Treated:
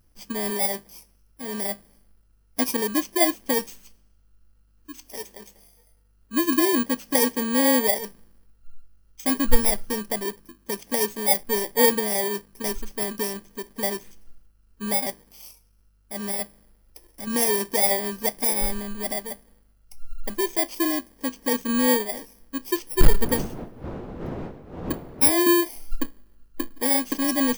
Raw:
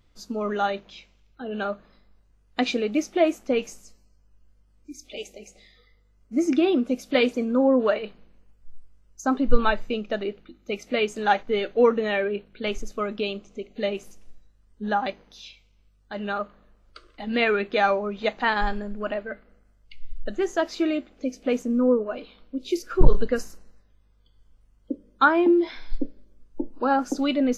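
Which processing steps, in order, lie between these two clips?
FFT order left unsorted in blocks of 32 samples; 23.2–25.3 wind noise 390 Hz -27 dBFS

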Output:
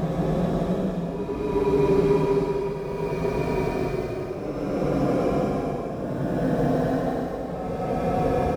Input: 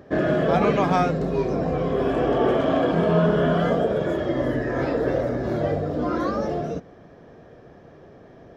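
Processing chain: tapped delay 41/52/743/773 ms -14.5/-15/-18.5/-18 dB; in parallel at -10 dB: requantised 6-bit, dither none; on the sum: grains 84 ms, grains 12/s, spray 23 ms, pitch spread up and down by 0 st; Paulstretch 19×, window 0.10 s, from 1.27

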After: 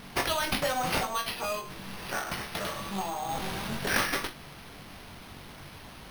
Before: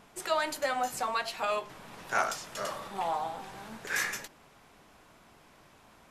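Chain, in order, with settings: tone controls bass +10 dB, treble +14 dB; compressor 4:1, threshold -33 dBFS, peak gain reduction 11.5 dB; 1.05–3.29 resonator 67 Hz, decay 0.16 s, harmonics odd, mix 60%; flutter echo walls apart 3.6 m, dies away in 0.24 s; careless resampling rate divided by 6×, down none, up hold; gain +5.5 dB

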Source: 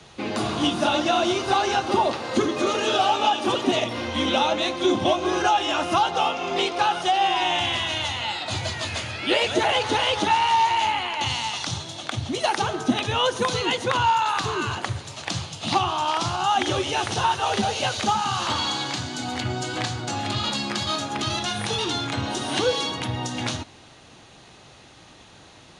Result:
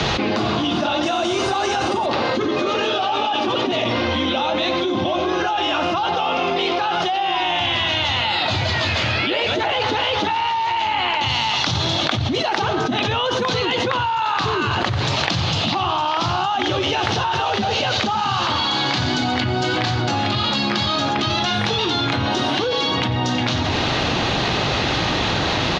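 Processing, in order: LPF 5300 Hz 24 dB/oct, from 1.03 s 8700 Hz, from 2.06 s 5000 Hz; echo 92 ms -15.5 dB; fast leveller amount 100%; gain -4.5 dB

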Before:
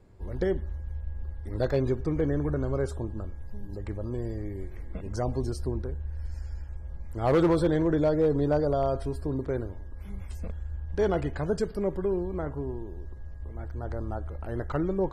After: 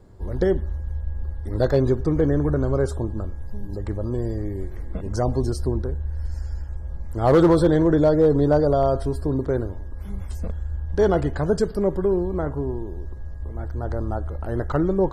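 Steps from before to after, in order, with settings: bell 2400 Hz -9 dB 0.51 oct; gain +7 dB

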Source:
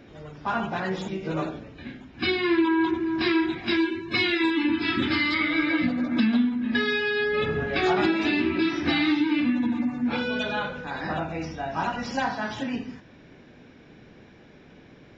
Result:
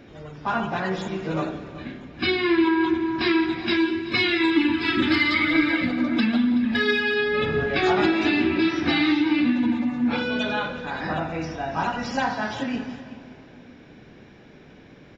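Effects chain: 4.56–7.14 phaser 1 Hz, delay 3.5 ms, feedback 41%; tapped delay 0.173/0.376 s -19/-17.5 dB; reverb RT60 3.1 s, pre-delay 91 ms, DRR 14 dB; gain +2 dB

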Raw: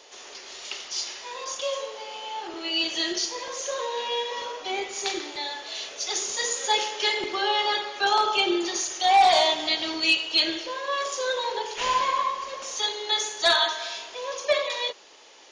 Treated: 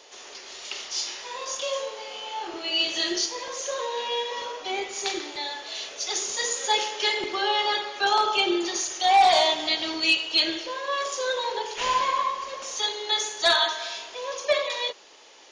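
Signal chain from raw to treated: 0.73–3.26 doubler 26 ms -4.5 dB

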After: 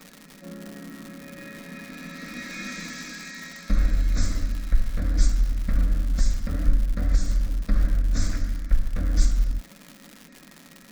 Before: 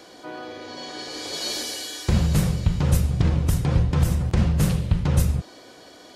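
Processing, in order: wide varispeed 0.564×; bell 810 Hz -8 dB 1.3 oct; fixed phaser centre 590 Hz, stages 8; crackle 230/s -32 dBFS; on a send: reverb, pre-delay 4 ms, DRR 11 dB

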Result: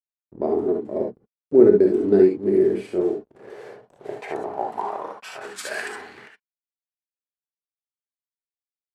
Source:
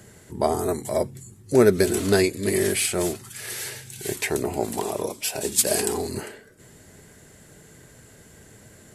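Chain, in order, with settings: backlash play -26.5 dBFS; non-linear reverb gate 90 ms rising, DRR 1 dB; band-pass sweep 340 Hz -> 2400 Hz, 2.84–6.61; gain +5 dB

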